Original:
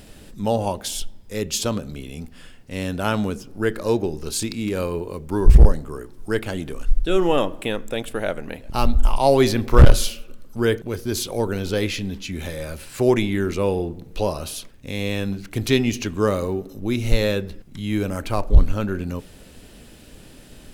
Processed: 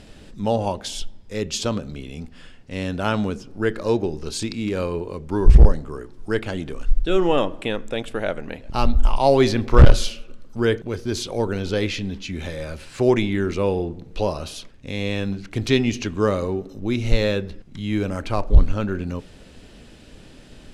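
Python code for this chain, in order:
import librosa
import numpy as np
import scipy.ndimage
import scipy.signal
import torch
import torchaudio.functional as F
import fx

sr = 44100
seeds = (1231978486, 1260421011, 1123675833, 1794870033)

y = scipy.signal.sosfilt(scipy.signal.butter(2, 6400.0, 'lowpass', fs=sr, output='sos'), x)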